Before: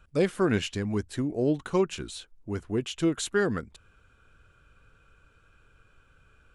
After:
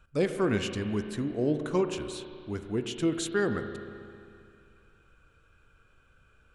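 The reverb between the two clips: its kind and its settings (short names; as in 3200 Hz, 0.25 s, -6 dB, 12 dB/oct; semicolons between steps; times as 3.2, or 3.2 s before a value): spring tank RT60 2.4 s, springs 33/44 ms, chirp 50 ms, DRR 7.5 dB; gain -2.5 dB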